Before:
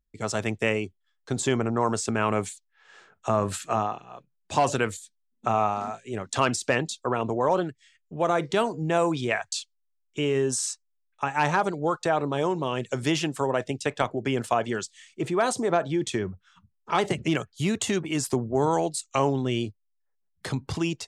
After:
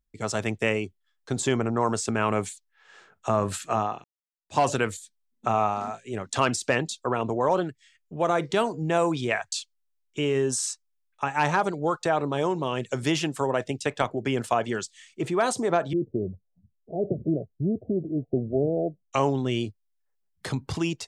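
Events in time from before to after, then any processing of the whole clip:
4.04–4.58 fade in exponential
15.93–19.13 steep low-pass 690 Hz 96 dB/oct

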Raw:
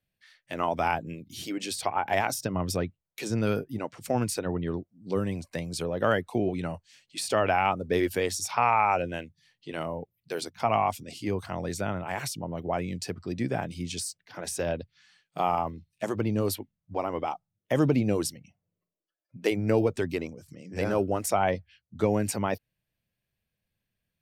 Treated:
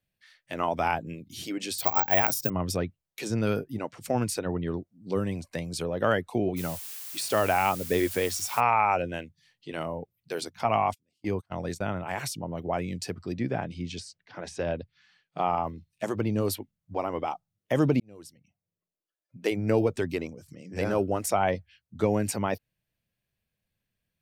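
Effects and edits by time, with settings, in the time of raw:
1.78–2.5 careless resampling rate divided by 2×, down none, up zero stuff
6.56–8.59 added noise blue -40 dBFS
10.64–11.83 gate -35 dBFS, range -35 dB
13.35–15.64 air absorption 120 m
18–19.75 fade in

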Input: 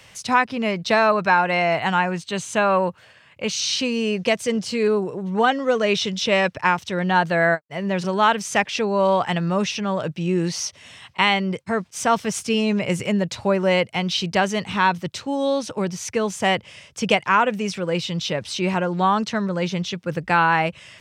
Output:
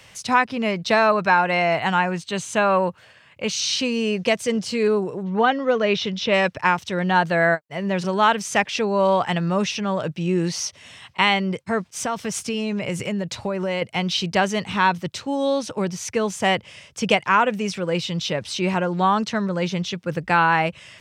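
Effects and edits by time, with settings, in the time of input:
5.23–6.34 Bessel low-pass 4100 Hz, order 4
11.97–13.82 compressor 5:1, threshold -21 dBFS

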